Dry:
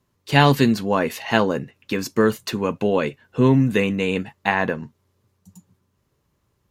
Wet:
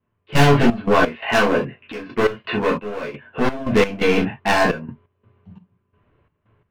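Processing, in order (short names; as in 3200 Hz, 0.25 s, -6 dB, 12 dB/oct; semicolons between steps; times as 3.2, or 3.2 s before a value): steep low-pass 2900 Hz 36 dB/oct; overloaded stage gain 20.5 dB; 1.13–3.73 low shelf 280 Hz -7 dB; reverb, pre-delay 9 ms, DRR -5 dB; step gate "..xx.x.xxxx.x.xx" 86 bpm -12 dB; gain +3.5 dB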